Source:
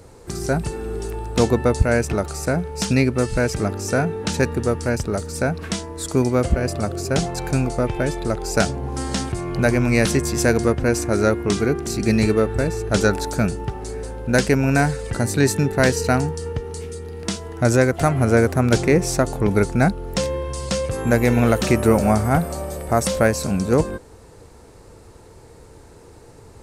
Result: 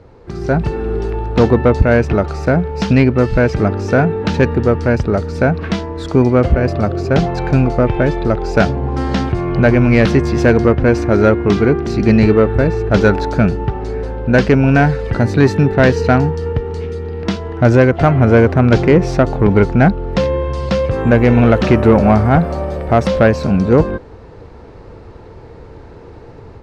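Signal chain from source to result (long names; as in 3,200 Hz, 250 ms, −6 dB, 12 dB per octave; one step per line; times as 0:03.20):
high-frequency loss of the air 260 metres
soft clipping −9.5 dBFS, distortion −19 dB
automatic gain control gain up to 7 dB
level +2.5 dB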